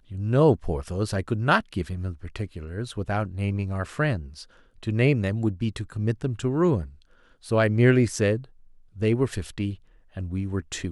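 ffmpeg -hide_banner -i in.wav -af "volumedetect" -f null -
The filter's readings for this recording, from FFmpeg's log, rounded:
mean_volume: -25.4 dB
max_volume: -6.9 dB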